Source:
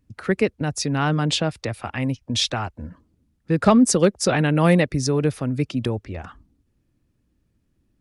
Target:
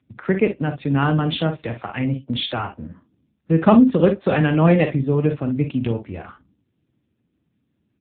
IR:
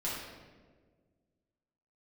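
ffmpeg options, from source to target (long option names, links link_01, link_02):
-filter_complex "[0:a]aecho=1:1:43|58:0.355|0.266,asplit=2[link_01][link_02];[1:a]atrim=start_sample=2205,atrim=end_sample=3528,highshelf=frequency=3900:gain=-8.5[link_03];[link_02][link_03]afir=irnorm=-1:irlink=0,volume=-21dB[link_04];[link_01][link_04]amix=inputs=2:normalize=0,volume=1.5dB" -ar 8000 -c:a libopencore_amrnb -b:a 6700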